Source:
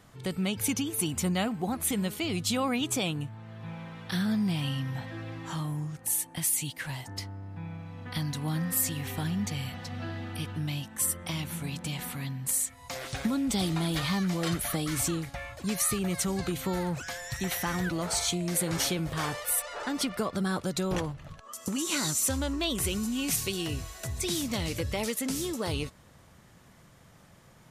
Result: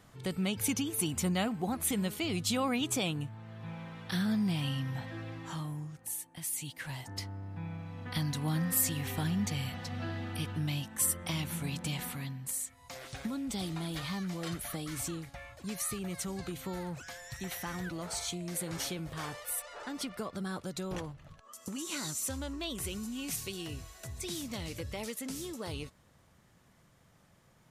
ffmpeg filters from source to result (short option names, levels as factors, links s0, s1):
-af "volume=2.66,afade=t=out:st=5.18:d=1.13:silence=0.334965,afade=t=in:st=6.31:d=1.05:silence=0.281838,afade=t=out:st=11.94:d=0.58:silence=0.446684"